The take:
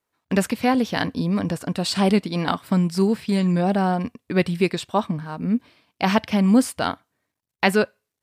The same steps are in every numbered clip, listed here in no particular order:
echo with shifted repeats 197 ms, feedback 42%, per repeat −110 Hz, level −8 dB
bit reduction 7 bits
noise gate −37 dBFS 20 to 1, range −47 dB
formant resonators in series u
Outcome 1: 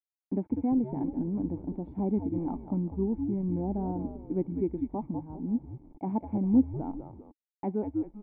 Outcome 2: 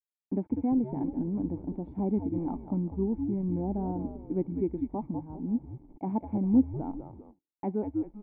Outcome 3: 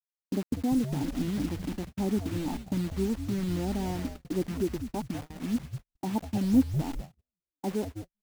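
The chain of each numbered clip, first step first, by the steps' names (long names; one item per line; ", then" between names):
echo with shifted repeats, then noise gate, then bit reduction, then formant resonators in series
echo with shifted repeats, then bit reduction, then noise gate, then formant resonators in series
formant resonators in series, then bit reduction, then echo with shifted repeats, then noise gate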